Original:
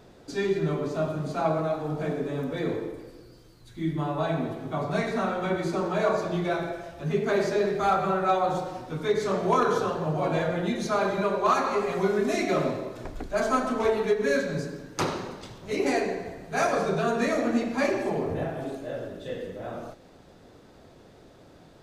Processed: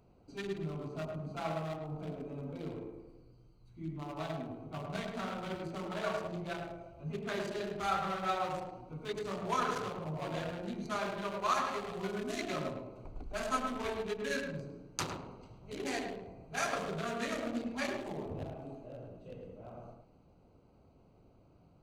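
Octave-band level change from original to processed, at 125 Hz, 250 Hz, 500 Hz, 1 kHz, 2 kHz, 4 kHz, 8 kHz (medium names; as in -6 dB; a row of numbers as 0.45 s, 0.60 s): -10.0 dB, -11.5 dB, -13.0 dB, -9.5 dB, -8.5 dB, -5.5 dB, -5.5 dB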